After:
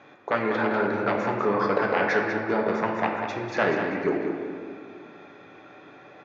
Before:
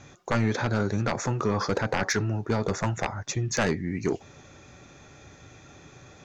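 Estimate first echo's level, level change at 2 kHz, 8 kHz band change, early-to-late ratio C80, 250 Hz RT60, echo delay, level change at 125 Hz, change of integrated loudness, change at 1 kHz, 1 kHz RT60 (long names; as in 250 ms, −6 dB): −8.0 dB, +4.5 dB, below −15 dB, 3.0 dB, 2.9 s, 195 ms, −10.0 dB, +2.0 dB, +5.5 dB, 2.0 s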